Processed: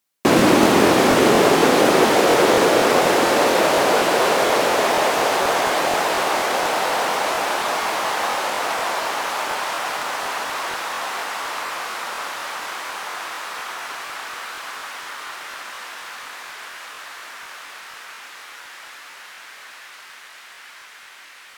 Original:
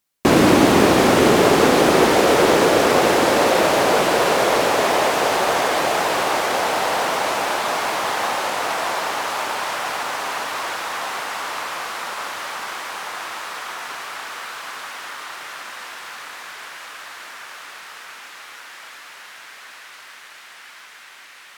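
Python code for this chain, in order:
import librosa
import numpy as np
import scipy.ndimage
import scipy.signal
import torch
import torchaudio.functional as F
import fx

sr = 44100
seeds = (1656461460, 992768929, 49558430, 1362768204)

y = scipy.signal.sosfilt(scipy.signal.butter(2, 59.0, 'highpass', fs=sr, output='sos'), x)
y = fx.low_shelf(y, sr, hz=94.0, db=-11.0)
y = fx.buffer_crackle(y, sr, first_s=0.37, period_s=0.24, block=1024, kind='repeat')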